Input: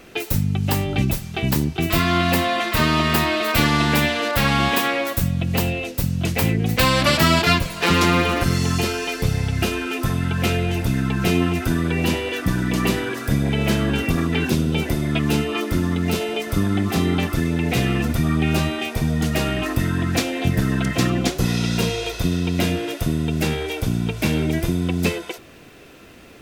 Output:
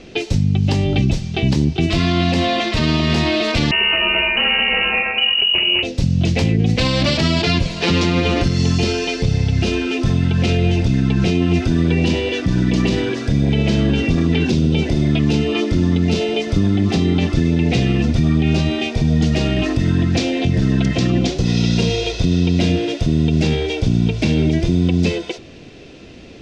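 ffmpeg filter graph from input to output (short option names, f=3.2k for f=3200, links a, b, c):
-filter_complex "[0:a]asettb=1/sr,asplit=3[a][b][c];[a]atrim=end=3.714[d];[b]atrim=start=3.71:end=5.83,asetpts=PTS-STARTPTS,afade=t=in:d=0.004:c=qsin,afade=t=out:st=2.116:d=0.004:c=qsin,lowpass=f=2.6k:t=q:w=0.5098,lowpass=f=2.6k:t=q:w=0.6013,lowpass=f=2.6k:t=q:w=0.9,lowpass=f=2.6k:t=q:w=2.563,afreqshift=-3000,aecho=1:1:206:0.668,atrim=end_sample=93492[e];[c]atrim=start=5.826[f];[d][e]acrossfade=d=0.004:c1=hsin:c2=qsin[g];[g][f]acrossfade=d=0.004:c1=qsin:c2=hsin,lowpass=f=5.8k:w=0.5412,lowpass=f=5.8k:w=1.3066,equalizer=f=1.3k:w=0.88:g=-12,alimiter=level_in=14.5dB:limit=-1dB:release=50:level=0:latency=1,volume=-6.5dB"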